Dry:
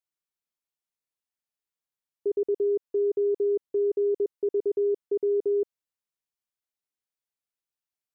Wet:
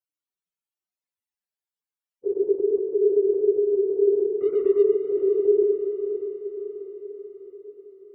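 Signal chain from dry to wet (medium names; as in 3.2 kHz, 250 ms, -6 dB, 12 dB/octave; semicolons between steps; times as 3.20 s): phase randomisation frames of 50 ms; 4.36–4.83 s: hysteresis with a dead band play -41.5 dBFS; loudest bins only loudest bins 64; echo that smears into a reverb 573 ms, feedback 55%, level -9 dB; on a send at -4 dB: reverberation, pre-delay 109 ms; on the sum: trim +2.5 dB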